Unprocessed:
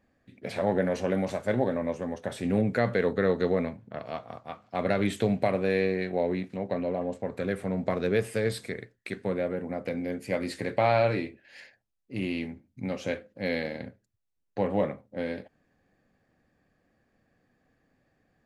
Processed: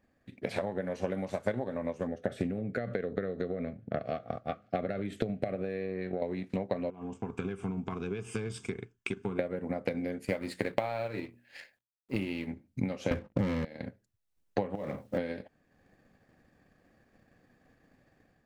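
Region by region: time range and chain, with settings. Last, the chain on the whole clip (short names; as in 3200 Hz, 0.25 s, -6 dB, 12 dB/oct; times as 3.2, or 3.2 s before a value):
2.07–6.22 high shelf 2700 Hz -10.5 dB + compressor 3:1, threshold -27 dBFS + Butterworth band-stop 950 Hz, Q 2.1
6.9–9.39 bell 400 Hz +7.5 dB 0.27 oct + compressor 2:1, threshold -36 dBFS + fixed phaser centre 2800 Hz, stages 8
10.25–12.47 G.711 law mismatch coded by A + bell 5900 Hz -4 dB 0.33 oct + notches 60/120/180/240/300 Hz
13.11–13.65 tone controls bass +15 dB, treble -13 dB + sample leveller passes 3
14.75–15.18 G.711 law mismatch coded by mu + compressor 8:1, threshold -31 dBFS
whole clip: compressor 8:1, threshold -36 dBFS; transient shaper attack +6 dB, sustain -5 dB; AGC gain up to 6.5 dB; gain -2 dB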